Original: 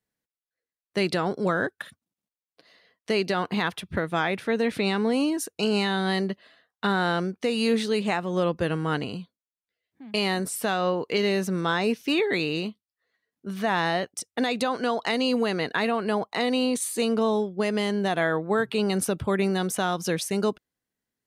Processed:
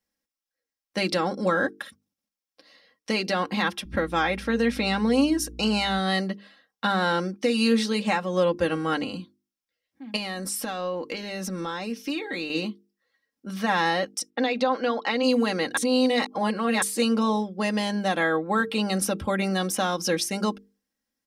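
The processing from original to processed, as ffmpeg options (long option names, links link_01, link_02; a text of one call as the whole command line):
ffmpeg -i in.wav -filter_complex "[0:a]asettb=1/sr,asplit=3[link_01][link_02][link_03];[link_01]atrim=end=3.854[link_04];[link_02]atrim=start=3.85:end=5.99,asetpts=PTS-STARTPTS,afade=type=in:duration=0.004:curve=qsin,afade=type=out:start_time=2.136:duration=0.004:curve=qsin,aeval=exprs='val(0)+0.00794*(sin(2*PI*60*n/s)+sin(2*PI*2*60*n/s)/2+sin(2*PI*3*60*n/s)/3+sin(2*PI*4*60*n/s)/4+sin(2*PI*5*60*n/s)/5)':channel_layout=same[link_05];[link_03]atrim=start=5.986[link_06];[link_04][link_05]acrossfade=duration=0.004:curve1=hsin:curve2=qsin[link_07];[link_07][link_06]acrossfade=duration=0.004:curve1=qsin:curve2=hsin,asettb=1/sr,asplit=3[link_08][link_09][link_10];[link_08]atrim=end=10.164[link_11];[link_09]atrim=start=10.16:end=12.5,asetpts=PTS-STARTPTS,afade=type=in:duration=0.004:curve=qsin,afade=type=out:start_time=2.336:duration=0.004:curve=qsin,acompressor=threshold=-27dB:ratio=10:attack=3.2:release=140:knee=1:detection=peak[link_12];[link_10]atrim=start=12.496[link_13];[link_11][link_12]acrossfade=duration=0.004:curve1=hsin:curve2=qsin[link_14];[link_14][link_13]acrossfade=duration=0.004:curve1=qsin:curve2=hsin,asplit=3[link_15][link_16][link_17];[link_15]afade=type=out:start_time=14.29:duration=0.02[link_18];[link_16]highpass=240,lowpass=3600,afade=type=in:start_time=14.29:duration=0.02,afade=type=out:start_time=15.22:duration=0.02[link_19];[link_17]afade=type=in:start_time=15.22:duration=0.02[link_20];[link_18][link_19][link_20]amix=inputs=3:normalize=0,asplit=3[link_21][link_22][link_23];[link_21]atrim=end=15.772[link_24];[link_22]atrim=start=15.768:end=16.822,asetpts=PTS-STARTPTS,areverse[link_25];[link_23]atrim=start=16.818[link_26];[link_24][link_25]acrossfade=duration=0.004:curve1=hsin:curve2=hsin[link_27];[link_27][link_26]acrossfade=duration=0.004:curve1=hsin:curve2=hsin,equalizer=frequency=5400:width_type=o:width=0.22:gain=8.5,bandreject=frequency=50:width_type=h:width=6,bandreject=frequency=100:width_type=h:width=6,bandreject=frequency=150:width_type=h:width=6,bandreject=frequency=200:width_type=h:width=6,bandreject=frequency=250:width_type=h:width=6,bandreject=frequency=300:width_type=h:width=6,bandreject=frequency=350:width_type=h:width=6,bandreject=frequency=400:width_type=h:width=6,bandreject=frequency=450:width_type=h:width=6,aecho=1:1:3.7:0.71" out.wav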